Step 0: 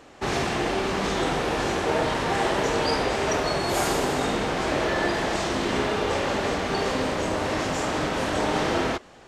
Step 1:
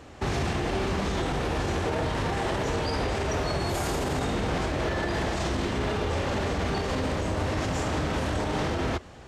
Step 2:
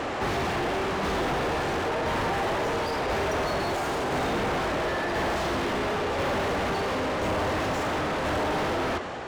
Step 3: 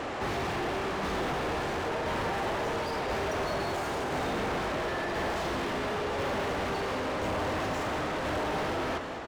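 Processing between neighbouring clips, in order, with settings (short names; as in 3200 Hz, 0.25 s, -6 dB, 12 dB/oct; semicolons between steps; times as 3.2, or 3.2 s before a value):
bell 73 Hz +14 dB 2 oct; limiter -19.5 dBFS, peak gain reduction 10.5 dB
tremolo saw down 0.97 Hz, depth 70%; overdrive pedal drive 35 dB, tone 1400 Hz, clips at -19.5 dBFS
feedback echo 0.209 s, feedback 45%, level -11 dB; gain -4.5 dB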